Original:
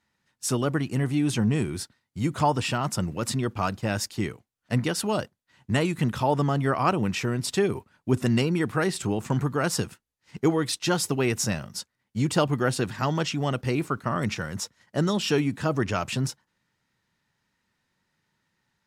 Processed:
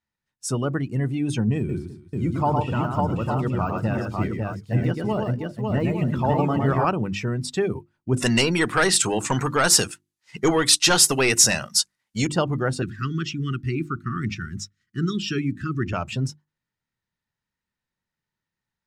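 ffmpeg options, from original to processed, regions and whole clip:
ffmpeg -i in.wav -filter_complex "[0:a]asettb=1/sr,asplit=3[link_01][link_02][link_03];[link_01]atrim=end=1.584[link_04];[link_02]atrim=start=1.58:end=6.85,asetpts=PTS-STARTPTS,afade=type=in:duration=0.004:curve=qsin,afade=type=out:start_time=5.266:duration=0.004:curve=qsin,deesser=1,aecho=1:1:110|149|315|550|859:0.668|0.133|0.2|0.708|0.398,atrim=end_sample=232407[link_05];[link_03]atrim=start=6.846[link_06];[link_04][link_05]acrossfade=duration=0.004:curve1=hsin:curve2=qsin[link_07];[link_07][link_06]acrossfade=duration=0.004:curve1=qsin:curve2=hsin,asettb=1/sr,asplit=3[link_08][link_09][link_10];[link_08]atrim=end=8.164[link_11];[link_09]atrim=start=8.16:end=12.27,asetpts=PTS-STARTPTS,afade=type=in:duration=0.004:curve=qsin,afade=type=out:start_time=4.106:duration=0.004:curve=qsin,asplit=2[link_12][link_13];[link_13]highpass=frequency=720:poles=1,volume=16dB,asoftclip=type=tanh:threshold=-10dB[link_14];[link_12][link_14]amix=inputs=2:normalize=0,lowpass=frequency=3200:poles=1,volume=-6dB,equalizer=frequency=10000:width_type=o:width=2.3:gain=15[link_15];[link_10]atrim=start=12.266[link_16];[link_11][link_15]acrossfade=duration=0.004:curve1=hsin:curve2=qsin[link_17];[link_17][link_16]acrossfade=duration=0.004:curve1=qsin:curve2=hsin,asettb=1/sr,asplit=3[link_18][link_19][link_20];[link_18]atrim=end=12.824[link_21];[link_19]atrim=start=12.82:end=15.93,asetpts=PTS-STARTPTS,afade=type=in:duration=0.004:curve=qsin,afade=type=out:start_time=3.106:duration=0.004:curve=qsin,asuperstop=centerf=680:order=12:qfactor=0.88,equalizer=frequency=11000:width=2.4:gain=-5.5[link_22];[link_20]atrim=start=15.926[link_23];[link_21][link_22]acrossfade=duration=0.004:curve1=hsin:curve2=qsin[link_24];[link_24][link_23]acrossfade=duration=0.004:curve1=qsin:curve2=hsin,bandreject=frequency=50:width_type=h:width=6,bandreject=frequency=100:width_type=h:width=6,bandreject=frequency=150:width_type=h:width=6,bandreject=frequency=200:width_type=h:width=6,bandreject=frequency=250:width_type=h:width=6,bandreject=frequency=300:width_type=h:width=6,bandreject=frequency=350:width_type=h:width=6,afftdn=noise_reduction=13:noise_floor=-35,lowshelf=frequency=71:gain=11.5" out.wav

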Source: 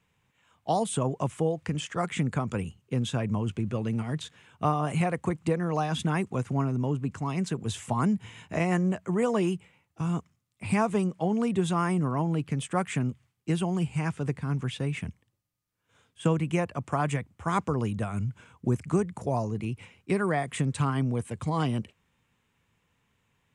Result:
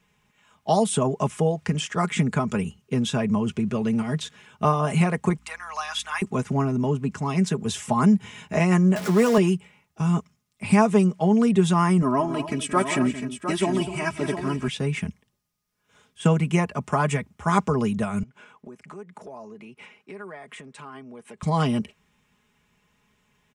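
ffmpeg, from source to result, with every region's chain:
ffmpeg -i in.wav -filter_complex "[0:a]asettb=1/sr,asplit=3[link_01][link_02][link_03];[link_01]atrim=end=5.384[link_04];[link_02]atrim=start=5.38:end=6.22,asetpts=PTS-STARTPTS,afade=type=in:duration=0.004:curve=qsin,afade=type=out:start_time=0.836:duration=0.004:curve=qsin,highpass=frequency=1000:width=0.5412,highpass=frequency=1000:width=1.3066,aeval=exprs='val(0)+0.000891*(sin(2*PI*60*n/s)+sin(2*PI*2*60*n/s)/2+sin(2*PI*3*60*n/s)/3+sin(2*PI*4*60*n/s)/4+sin(2*PI*5*60*n/s)/5)':channel_layout=same[link_05];[link_03]atrim=start=6.216[link_06];[link_04][link_05]acrossfade=duration=0.004:curve1=hsin:curve2=qsin[link_07];[link_07][link_06]acrossfade=duration=0.004:curve1=qsin:curve2=hsin,asettb=1/sr,asplit=3[link_08][link_09][link_10];[link_08]atrim=end=8.964[link_11];[link_09]atrim=start=8.96:end=9.38,asetpts=PTS-STARTPTS,afade=type=in:duration=0.004:curve=qsin,afade=type=out:start_time=0.416:duration=0.004:curve=qsin,aeval=exprs='val(0)+0.5*0.0282*sgn(val(0))':channel_layout=same,highpass=170[link_12];[link_10]atrim=start=9.376[link_13];[link_11][link_12]acrossfade=duration=0.004:curve1=hsin:curve2=qsin[link_14];[link_14][link_13]acrossfade=duration=0.004:curve1=qsin:curve2=hsin,asettb=1/sr,asplit=3[link_15][link_16][link_17];[link_15]atrim=end=12.024[link_18];[link_16]atrim=start=12.02:end=14.68,asetpts=PTS-STARTPTS,afade=type=in:duration=0.004:curve=qsin,afade=type=out:start_time=2.656:duration=0.004:curve=qsin,equalizer=frequency=6700:width_type=o:width=0.21:gain=-4.5,aecho=1:1:3.1:0.82,atrim=end_sample=117306,aecho=1:1:173|252|705:0.224|0.211|0.355,atrim=end_sample=117306[link_19];[link_17]atrim=start=14.676[link_20];[link_18][link_19]acrossfade=duration=0.004:curve1=hsin:curve2=qsin[link_21];[link_21][link_20]acrossfade=duration=0.004:curve1=qsin:curve2=hsin,asettb=1/sr,asplit=3[link_22][link_23][link_24];[link_22]atrim=end=18.234[link_25];[link_23]atrim=start=18.23:end=21.43,asetpts=PTS-STARTPTS,afade=type=in:duration=0.004:curve=qsin,afade=type=out:start_time=3.196:duration=0.004:curve=qsin,highpass=150,acompressor=threshold=-43dB:ratio=4:attack=3.2:release=140:knee=1:detection=peak,bass=frequency=250:gain=-10,treble=frequency=4000:gain=-9[link_26];[link_24]atrim=start=21.426[link_27];[link_25][link_26]acrossfade=duration=0.004:curve1=hsin:curve2=qsin[link_28];[link_28][link_27]acrossfade=duration=0.004:curve1=qsin:curve2=hsin,equalizer=frequency=5500:width_type=o:width=0.24:gain=5,aecho=1:1:4.8:0.6,volume=4.5dB" out.wav

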